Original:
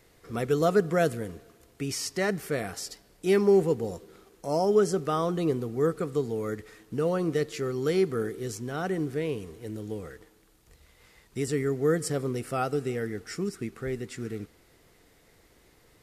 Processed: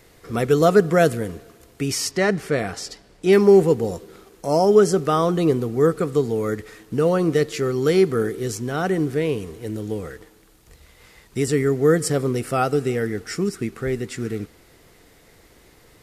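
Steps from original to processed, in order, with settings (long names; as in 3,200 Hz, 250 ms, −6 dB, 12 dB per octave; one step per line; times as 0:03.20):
0:02.11–0:03.33: high-frequency loss of the air 54 metres
level +8 dB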